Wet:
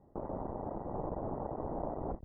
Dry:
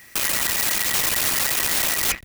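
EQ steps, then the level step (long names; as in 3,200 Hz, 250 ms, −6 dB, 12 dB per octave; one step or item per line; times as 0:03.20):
Butterworth low-pass 860 Hz 36 dB per octave
spectral tilt −2 dB per octave
low-shelf EQ 210 Hz −8.5 dB
−3.0 dB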